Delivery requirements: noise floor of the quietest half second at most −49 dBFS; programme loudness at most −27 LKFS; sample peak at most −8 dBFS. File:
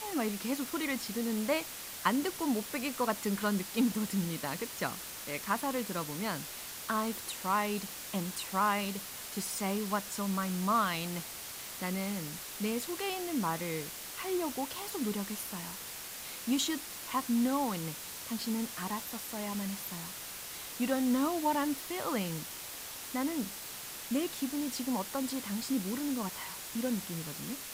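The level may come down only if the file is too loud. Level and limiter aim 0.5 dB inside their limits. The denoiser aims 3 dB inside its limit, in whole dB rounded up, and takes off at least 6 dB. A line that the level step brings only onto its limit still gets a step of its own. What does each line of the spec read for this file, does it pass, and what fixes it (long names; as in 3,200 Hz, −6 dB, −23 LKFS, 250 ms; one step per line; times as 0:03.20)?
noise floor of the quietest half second −44 dBFS: out of spec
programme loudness −34.5 LKFS: in spec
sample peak −12.5 dBFS: in spec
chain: broadband denoise 8 dB, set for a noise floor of −44 dBFS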